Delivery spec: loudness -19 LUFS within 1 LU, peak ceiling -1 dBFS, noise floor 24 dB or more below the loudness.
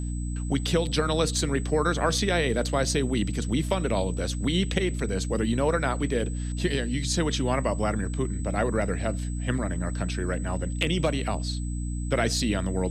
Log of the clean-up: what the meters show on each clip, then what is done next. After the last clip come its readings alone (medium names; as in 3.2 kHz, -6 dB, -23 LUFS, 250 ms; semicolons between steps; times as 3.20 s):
hum 60 Hz; highest harmonic 300 Hz; hum level -28 dBFS; steady tone 8 kHz; tone level -44 dBFS; loudness -27.0 LUFS; peak level -11.0 dBFS; loudness target -19.0 LUFS
-> hum notches 60/120/180/240/300 Hz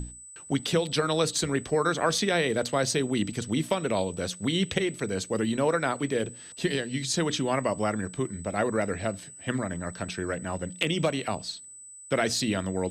hum not found; steady tone 8 kHz; tone level -44 dBFS
-> band-stop 8 kHz, Q 30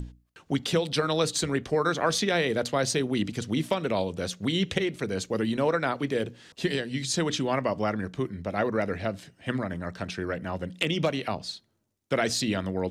steady tone not found; loudness -28.5 LUFS; peak level -11.5 dBFS; loudness target -19.0 LUFS
-> trim +9.5 dB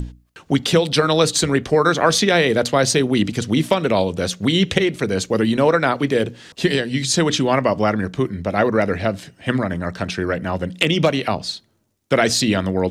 loudness -19.0 LUFS; peak level -2.0 dBFS; noise floor -58 dBFS